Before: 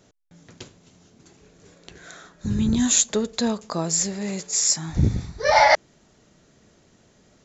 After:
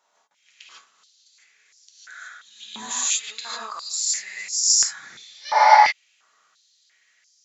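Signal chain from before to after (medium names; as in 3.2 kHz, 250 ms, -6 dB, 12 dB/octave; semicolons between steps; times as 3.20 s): pre-echo 146 ms -23 dB; gated-style reverb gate 180 ms rising, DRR -6.5 dB; step-sequenced high-pass 2.9 Hz 940–5300 Hz; trim -10.5 dB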